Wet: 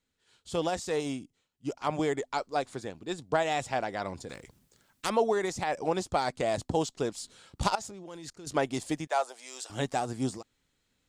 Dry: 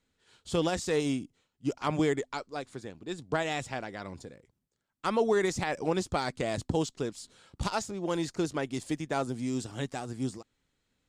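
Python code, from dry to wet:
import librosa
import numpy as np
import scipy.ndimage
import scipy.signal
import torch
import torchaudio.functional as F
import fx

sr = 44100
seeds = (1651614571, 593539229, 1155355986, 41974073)

y = fx.level_steps(x, sr, step_db=23, at=(7.75, 8.47))
y = fx.high_shelf(y, sr, hz=2400.0, db=4.0)
y = fx.rider(y, sr, range_db=4, speed_s=0.5)
y = fx.highpass(y, sr, hz=570.0, slope=24, at=(9.07, 9.7))
y = fx.dynamic_eq(y, sr, hz=730.0, q=1.1, threshold_db=-45.0, ratio=4.0, max_db=8)
y = fx.spectral_comp(y, sr, ratio=2.0, at=(4.29, 5.1))
y = F.gain(torch.from_numpy(y), -2.5).numpy()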